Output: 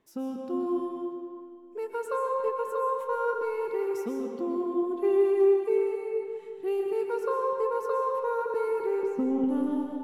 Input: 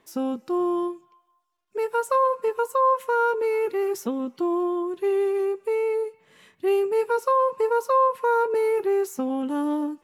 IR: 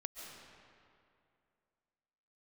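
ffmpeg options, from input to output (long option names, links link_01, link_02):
-filter_complex "[0:a]lowshelf=frequency=490:gain=8,asettb=1/sr,asplit=3[link_01][link_02][link_03];[link_01]atrim=end=4.824[link_04];[link_02]atrim=start=4.82:end=5.78,asetpts=PTS-STARTPTS,afade=type=in:duration=0.004:curve=qsin,afade=type=out:start_time=0.956:duration=0.004:curve=qsin,aecho=1:1:2.6:0.91,atrim=end_sample=42336[link_05];[link_03]atrim=start=5.776[link_06];[link_04][link_05]acrossfade=duration=0.004:curve1=hsin:curve2=qsin[link_07];[link_07][link_06]acrossfade=duration=0.004:curve1=qsin:curve2=hsin,asettb=1/sr,asplit=3[link_08][link_09][link_10];[link_08]atrim=end=9.034[link_11];[link_09]atrim=start=9.03:end=9.44,asetpts=PTS-STARTPTS,afade=type=in:duration=0.004:curve=qsin,afade=type=out:start_time=0.406:duration=0.004:curve=qsin,aemphasis=mode=reproduction:type=riaa[link_12];[link_10]atrim=start=9.436[link_13];[link_11][link_12]acrossfade=duration=0.004:curve1=hsin:curve2=qsin[link_14];[link_14][link_13]acrossfade=duration=0.004:curve1=qsin:curve2=hsin[link_15];[1:a]atrim=start_sample=2205,asetrate=48510,aresample=44100[link_16];[link_15][link_16]afir=irnorm=-1:irlink=0,volume=-7dB"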